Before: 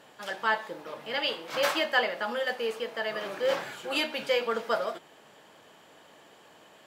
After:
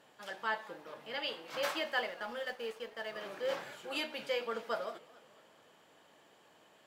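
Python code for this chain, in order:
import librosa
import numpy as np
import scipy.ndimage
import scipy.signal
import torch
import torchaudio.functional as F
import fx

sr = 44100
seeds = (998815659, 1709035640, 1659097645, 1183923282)

y = fx.law_mismatch(x, sr, coded='A', at=(1.96, 3.18))
y = fx.echo_warbled(y, sr, ms=218, feedback_pct=55, rate_hz=2.8, cents=166, wet_db=-22)
y = y * 10.0 ** (-8.5 / 20.0)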